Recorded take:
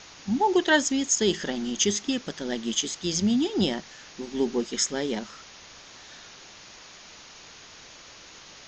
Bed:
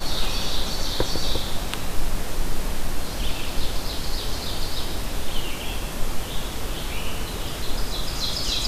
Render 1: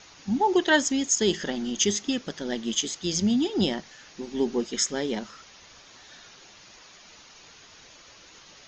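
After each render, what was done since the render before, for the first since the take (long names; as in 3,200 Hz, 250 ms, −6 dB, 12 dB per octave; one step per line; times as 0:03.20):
broadband denoise 6 dB, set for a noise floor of −48 dBFS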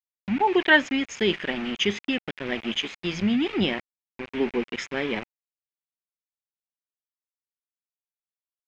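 centre clipping without the shift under −32.5 dBFS
low-pass with resonance 2,400 Hz, resonance Q 3.9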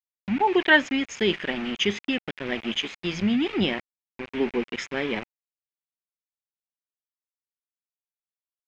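no processing that can be heard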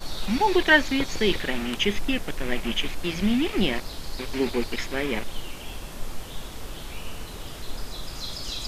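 mix in bed −8 dB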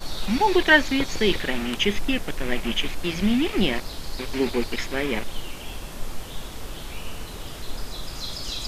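level +1.5 dB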